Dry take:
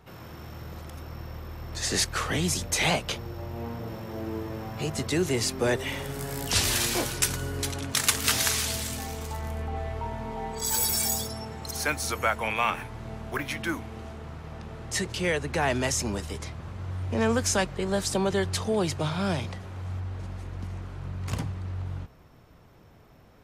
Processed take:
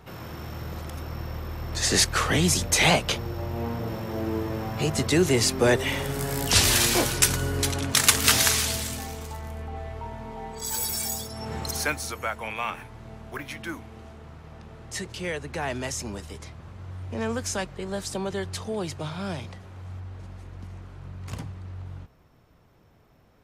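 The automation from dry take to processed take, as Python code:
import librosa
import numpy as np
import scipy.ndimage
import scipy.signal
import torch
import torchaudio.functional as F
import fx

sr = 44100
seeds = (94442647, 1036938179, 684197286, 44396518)

y = fx.gain(x, sr, db=fx.line((8.35, 5.0), (9.45, -3.0), (11.3, -3.0), (11.56, 7.0), (12.15, -4.5)))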